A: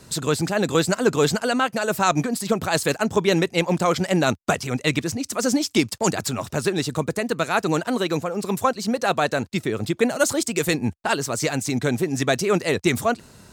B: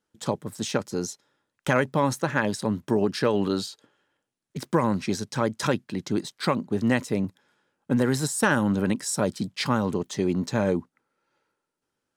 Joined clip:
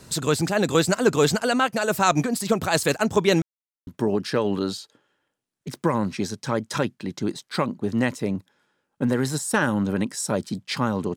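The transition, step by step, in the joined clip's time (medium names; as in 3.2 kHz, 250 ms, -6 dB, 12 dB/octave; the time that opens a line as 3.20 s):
A
3.42–3.87 s: mute
3.87 s: go over to B from 2.76 s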